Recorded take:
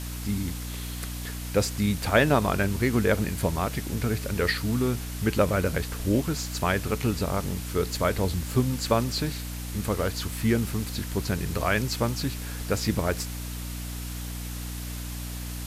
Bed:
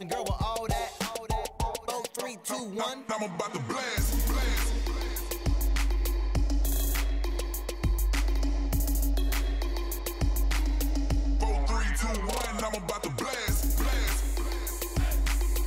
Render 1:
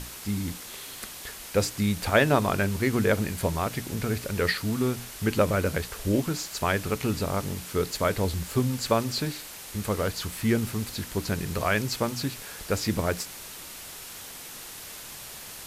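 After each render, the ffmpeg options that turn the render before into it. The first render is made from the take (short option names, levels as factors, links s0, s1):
-af "bandreject=f=60:t=h:w=6,bandreject=f=120:t=h:w=6,bandreject=f=180:t=h:w=6,bandreject=f=240:t=h:w=6,bandreject=f=300:t=h:w=6"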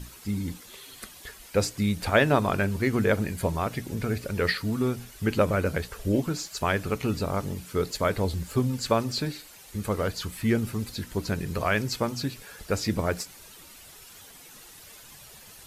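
-af "afftdn=nr=10:nf=-42"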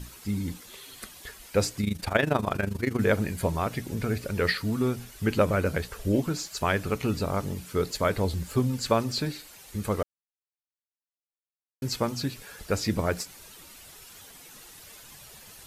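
-filter_complex "[0:a]asplit=3[s0][s1][s2];[s0]afade=t=out:st=1.81:d=0.02[s3];[s1]tremolo=f=25:d=0.788,afade=t=in:st=1.81:d=0.02,afade=t=out:st=2.99:d=0.02[s4];[s2]afade=t=in:st=2.99:d=0.02[s5];[s3][s4][s5]amix=inputs=3:normalize=0,asplit=3[s6][s7][s8];[s6]atrim=end=10.03,asetpts=PTS-STARTPTS,afade=t=out:st=10.026:d=0.004:c=hsin[s9];[s7]atrim=start=10.03:end=11.82,asetpts=PTS-STARTPTS,volume=0[s10];[s8]atrim=start=11.82,asetpts=PTS-STARTPTS,afade=t=in:d=0.004:c=hsin[s11];[s9][s10][s11]concat=n=3:v=0:a=1"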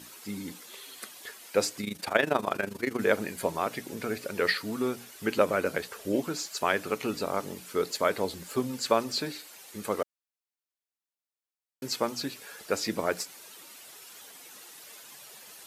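-af "highpass=290"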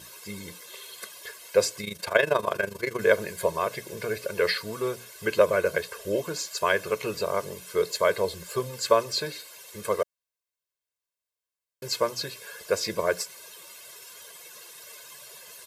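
-af "aecho=1:1:1.9:0.89"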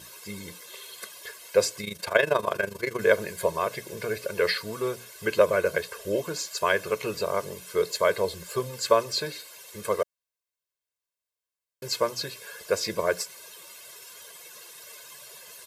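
-af anull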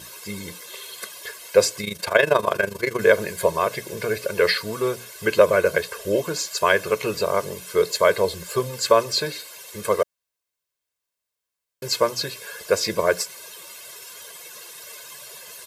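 -af "volume=1.88,alimiter=limit=0.891:level=0:latency=1"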